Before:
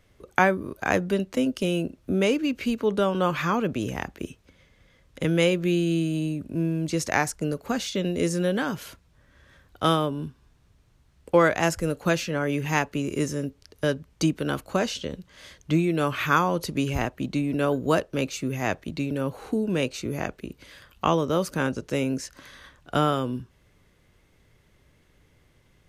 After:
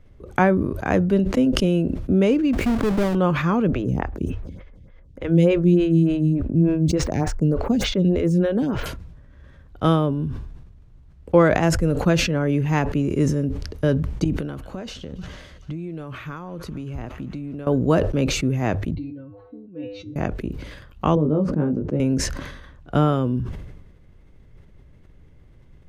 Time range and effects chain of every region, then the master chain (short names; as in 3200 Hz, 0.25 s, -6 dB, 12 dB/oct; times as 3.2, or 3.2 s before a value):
2.53–3.15 half-waves squared off + compressor 2.5:1, threshold -26 dBFS
3.68–8.86 median filter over 3 samples + low shelf 170 Hz +7 dB + photocell phaser 3.4 Hz
14.24–17.67 thin delay 0.145 s, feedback 84%, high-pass 1600 Hz, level -22 dB + compressor, threshold -35 dBFS
18.95–20.16 spectral contrast raised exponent 1.5 + LPF 4600 Hz 24 dB/oct + resonator 100 Hz, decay 0.36 s, harmonics odd, mix 100%
21.15–22 band-pass 250 Hz, Q 0.86 + doubler 20 ms -4.5 dB
whole clip: tilt -3 dB/oct; notches 50/100 Hz; sustainer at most 47 dB/s